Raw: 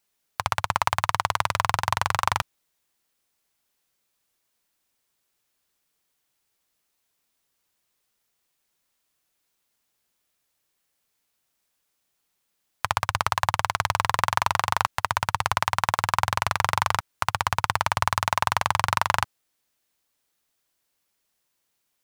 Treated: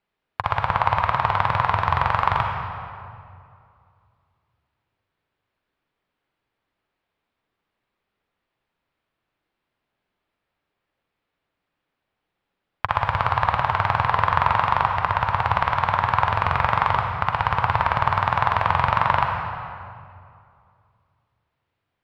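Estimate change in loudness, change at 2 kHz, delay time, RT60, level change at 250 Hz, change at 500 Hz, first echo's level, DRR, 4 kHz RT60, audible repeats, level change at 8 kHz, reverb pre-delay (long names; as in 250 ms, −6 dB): +3.5 dB, +2.0 dB, no echo audible, 2.4 s, +6.0 dB, +5.0 dB, no echo audible, 2.0 dB, 1.6 s, no echo audible, below −20 dB, 40 ms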